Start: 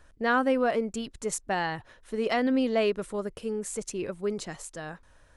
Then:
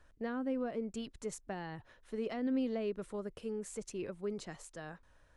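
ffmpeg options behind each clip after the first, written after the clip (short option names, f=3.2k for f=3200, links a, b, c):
-filter_complex "[0:a]highshelf=f=8k:g=-8,acrossover=split=410[a][b];[b]acompressor=threshold=-35dB:ratio=10[c];[a][c]amix=inputs=2:normalize=0,volume=-7dB"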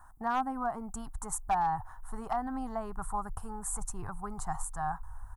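-af "firequalizer=gain_entry='entry(150,0);entry(210,-5);entry(540,-19);entry(770,15);entry(1200,10);entry(2400,-20);entry(5200,-10);entry(8200,7);entry(12000,12)':delay=0.05:min_phase=1,volume=29dB,asoftclip=hard,volume=-29dB,asubboost=boost=11:cutoff=77,volume=6.5dB"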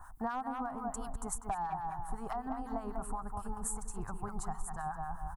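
-filter_complex "[0:a]asplit=2[a][b];[b]adelay=197,lowpass=f=1.6k:p=1,volume=-4dB,asplit=2[c][d];[d]adelay=197,lowpass=f=1.6k:p=1,volume=0.41,asplit=2[e][f];[f]adelay=197,lowpass=f=1.6k:p=1,volume=0.41,asplit=2[g][h];[h]adelay=197,lowpass=f=1.6k:p=1,volume=0.41,asplit=2[i][j];[j]adelay=197,lowpass=f=1.6k:p=1,volume=0.41[k];[a][c][e][g][i][k]amix=inputs=6:normalize=0,acompressor=threshold=-39dB:ratio=6,acrossover=split=990[l][m];[l]aeval=exprs='val(0)*(1-0.7/2+0.7/2*cos(2*PI*8*n/s))':c=same[n];[m]aeval=exprs='val(0)*(1-0.7/2-0.7/2*cos(2*PI*8*n/s))':c=same[o];[n][o]amix=inputs=2:normalize=0,volume=7.5dB"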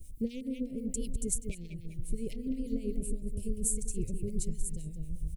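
-af "asuperstop=centerf=1100:order=20:qfactor=0.66,volume=7dB"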